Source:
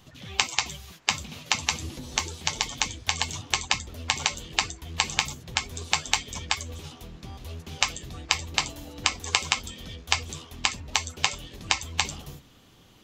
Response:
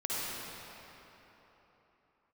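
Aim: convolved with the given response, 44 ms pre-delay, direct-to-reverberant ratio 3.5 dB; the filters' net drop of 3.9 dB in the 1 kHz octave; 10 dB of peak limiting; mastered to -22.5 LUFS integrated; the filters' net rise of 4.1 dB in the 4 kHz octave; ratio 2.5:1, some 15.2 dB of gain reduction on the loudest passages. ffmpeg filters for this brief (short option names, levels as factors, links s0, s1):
-filter_complex "[0:a]equalizer=f=1000:t=o:g=-5,equalizer=f=4000:t=o:g=5.5,acompressor=threshold=0.00794:ratio=2.5,alimiter=limit=0.0708:level=0:latency=1,asplit=2[s0][s1];[1:a]atrim=start_sample=2205,adelay=44[s2];[s1][s2]afir=irnorm=-1:irlink=0,volume=0.299[s3];[s0][s3]amix=inputs=2:normalize=0,volume=11.2"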